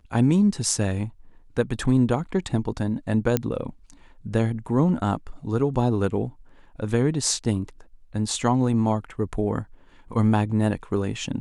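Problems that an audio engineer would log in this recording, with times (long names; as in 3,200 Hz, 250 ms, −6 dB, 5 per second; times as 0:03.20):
0:03.37: click −7 dBFS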